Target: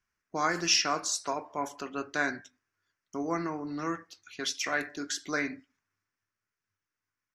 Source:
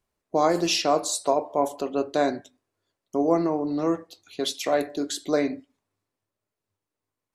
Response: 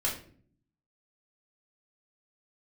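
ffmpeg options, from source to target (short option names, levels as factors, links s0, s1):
-af "firequalizer=gain_entry='entry(140,0);entry(560,-9);entry(1500,13);entry(3900,-2);entry(5600,10);entry(8400,-5)':delay=0.05:min_phase=1,volume=0.501"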